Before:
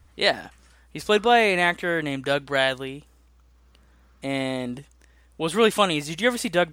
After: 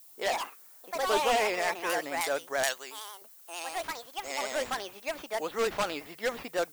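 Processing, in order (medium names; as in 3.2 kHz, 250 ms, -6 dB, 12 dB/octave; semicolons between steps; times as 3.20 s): level-controlled noise filter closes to 1.1 kHz, open at -15.5 dBFS; high-pass 530 Hz 12 dB/octave; careless resampling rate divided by 6×, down none, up zero stuff; tape spacing loss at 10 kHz 38 dB; wavefolder -19 dBFS; 2.63–4.73 s: tilt EQ +4.5 dB/octave; ever faster or slower copies 119 ms, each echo +4 st, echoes 2; vibrato 11 Hz 65 cents; added noise violet -52 dBFS; trim -2 dB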